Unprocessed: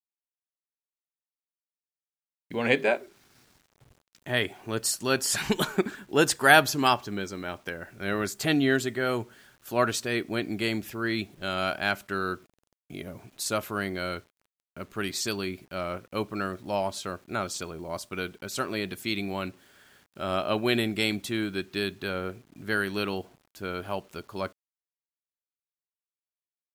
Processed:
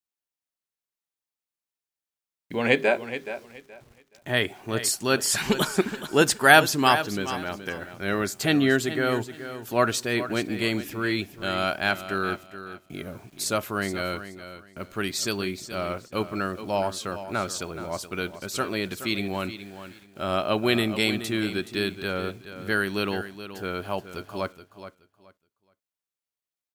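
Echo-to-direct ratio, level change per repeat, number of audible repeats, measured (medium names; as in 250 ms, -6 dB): -12.0 dB, -13.0 dB, 2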